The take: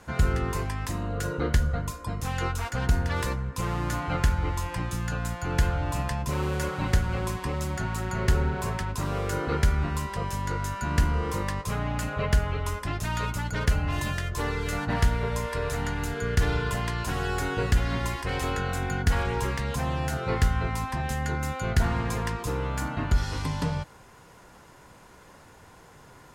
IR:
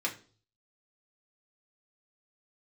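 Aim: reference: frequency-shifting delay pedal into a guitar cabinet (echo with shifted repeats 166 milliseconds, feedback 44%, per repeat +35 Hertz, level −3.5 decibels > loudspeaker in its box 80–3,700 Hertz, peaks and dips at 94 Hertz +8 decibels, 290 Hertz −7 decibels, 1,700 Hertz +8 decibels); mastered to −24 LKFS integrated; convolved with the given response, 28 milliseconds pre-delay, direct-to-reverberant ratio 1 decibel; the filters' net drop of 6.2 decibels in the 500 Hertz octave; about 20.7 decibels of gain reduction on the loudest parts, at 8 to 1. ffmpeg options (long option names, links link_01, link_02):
-filter_complex "[0:a]equalizer=frequency=500:width_type=o:gain=-7,acompressor=threshold=-39dB:ratio=8,asplit=2[link_01][link_02];[1:a]atrim=start_sample=2205,adelay=28[link_03];[link_02][link_03]afir=irnorm=-1:irlink=0,volume=-6.5dB[link_04];[link_01][link_04]amix=inputs=2:normalize=0,asplit=7[link_05][link_06][link_07][link_08][link_09][link_10][link_11];[link_06]adelay=166,afreqshift=35,volume=-3.5dB[link_12];[link_07]adelay=332,afreqshift=70,volume=-10.6dB[link_13];[link_08]adelay=498,afreqshift=105,volume=-17.8dB[link_14];[link_09]adelay=664,afreqshift=140,volume=-24.9dB[link_15];[link_10]adelay=830,afreqshift=175,volume=-32dB[link_16];[link_11]adelay=996,afreqshift=210,volume=-39.2dB[link_17];[link_05][link_12][link_13][link_14][link_15][link_16][link_17]amix=inputs=7:normalize=0,highpass=80,equalizer=frequency=94:width_type=q:width=4:gain=8,equalizer=frequency=290:width_type=q:width=4:gain=-7,equalizer=frequency=1700:width_type=q:width=4:gain=8,lowpass=frequency=3700:width=0.5412,lowpass=frequency=3700:width=1.3066,volume=14.5dB"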